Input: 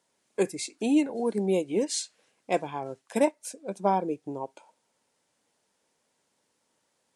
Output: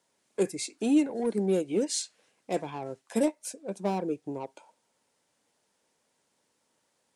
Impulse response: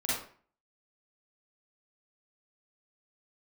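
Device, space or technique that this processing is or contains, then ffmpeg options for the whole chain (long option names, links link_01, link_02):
one-band saturation: -filter_complex "[0:a]asettb=1/sr,asplit=3[link_01][link_02][link_03];[link_01]atrim=end=3.044[link_04];[link_02]atrim=start=3.04:end=3.5,asetpts=PTS-STARTPTS,afade=type=in:duration=0.004:curve=qsin,afade=type=out:start_time=0.456:duration=0.004:curve=qsin,asplit=2[link_05][link_06];[link_06]adelay=13,volume=-8dB[link_07];[link_05][link_07]amix=inputs=2:normalize=0,atrim=end_sample=20286[link_08];[link_03]atrim=start=3.496[link_09];[link_04][link_08]acrossfade=duration=0.004:curve1=hsin:curve2=qsin[link_10];[link_10][link_09]acrossfade=duration=0.004:curve1=qsin:curve2=hsin,acrossover=split=550|4100[link_11][link_12][link_13];[link_12]asoftclip=type=tanh:threshold=-36.5dB[link_14];[link_11][link_14][link_13]amix=inputs=3:normalize=0"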